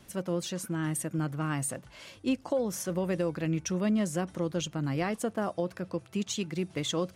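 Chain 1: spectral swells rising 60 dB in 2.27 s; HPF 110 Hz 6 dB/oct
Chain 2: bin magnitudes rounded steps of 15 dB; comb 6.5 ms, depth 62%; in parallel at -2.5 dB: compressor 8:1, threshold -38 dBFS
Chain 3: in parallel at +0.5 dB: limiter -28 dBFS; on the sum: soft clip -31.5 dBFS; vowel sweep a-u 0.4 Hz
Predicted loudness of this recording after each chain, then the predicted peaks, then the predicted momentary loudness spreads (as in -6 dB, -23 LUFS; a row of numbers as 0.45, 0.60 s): -28.0, -29.0, -47.0 LUFS; -11.5, -14.0, -33.0 dBFS; 3, 5, 8 LU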